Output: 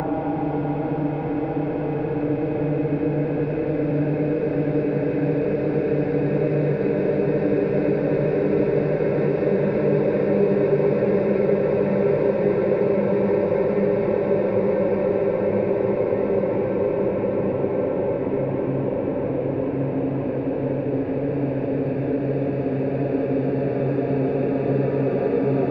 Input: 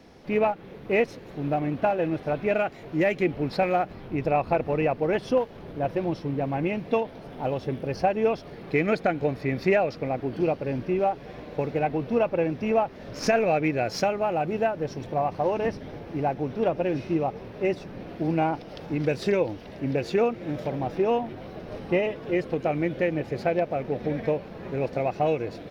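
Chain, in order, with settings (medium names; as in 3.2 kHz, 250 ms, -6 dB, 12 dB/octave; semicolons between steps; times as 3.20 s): low-pass 1.4 kHz 12 dB/octave; Paulstretch 21×, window 1.00 s, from 18.75 s; three bands compressed up and down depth 40%; trim +5.5 dB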